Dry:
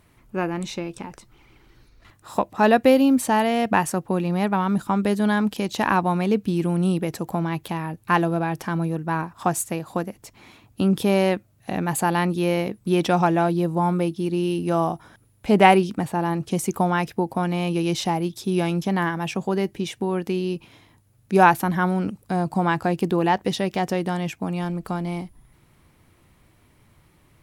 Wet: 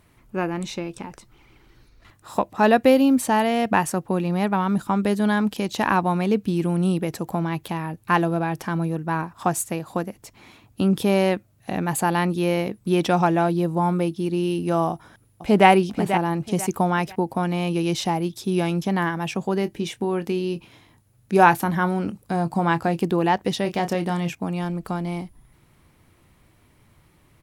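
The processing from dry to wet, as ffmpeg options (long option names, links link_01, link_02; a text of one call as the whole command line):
ffmpeg -i in.wav -filter_complex "[0:a]asplit=2[link_01][link_02];[link_02]afade=type=in:start_time=14.91:duration=0.01,afade=type=out:start_time=15.68:duration=0.01,aecho=0:1:490|980|1470:0.354813|0.106444|0.0319332[link_03];[link_01][link_03]amix=inputs=2:normalize=0,asettb=1/sr,asplit=3[link_04][link_05][link_06];[link_04]atrim=end=19.604[link_07];[link_05]atrim=start=19.6:end=23.03,asetpts=PTS-STARTPTS,afade=type=in:duration=0.004:curve=qsin,afade=type=out:start_time=3.426:duration=0.004:curve=qsin,asplit=2[link_08][link_09];[link_09]adelay=24,volume=-13dB[link_10];[link_08][link_10]amix=inputs=2:normalize=0,atrim=end_sample=151263[link_11];[link_06]atrim=start=23.026[link_12];[link_07][link_11]acrossfade=duration=0.004:curve1=hsin:curve2=qsin[link_13];[link_13][link_12]acrossfade=duration=0.004:curve1=qsin:curve2=hsin,asettb=1/sr,asplit=3[link_14][link_15][link_16];[link_14]atrim=end=23.624[link_17];[link_15]atrim=start=23.62:end=24.35,asetpts=PTS-STARTPTS,afade=type=in:duration=0.004:curve=qsin,afade=type=out:start_time=0.726:duration=0.004:curve=qsin,asplit=2[link_18][link_19];[link_19]adelay=29,volume=-9dB[link_20];[link_18][link_20]amix=inputs=2:normalize=0,atrim=end_sample=32193[link_21];[link_16]atrim=start=24.346[link_22];[link_17][link_21]acrossfade=duration=0.004:curve1=hsin:curve2=qsin[link_23];[link_23][link_22]acrossfade=duration=0.004:curve1=qsin:curve2=hsin" out.wav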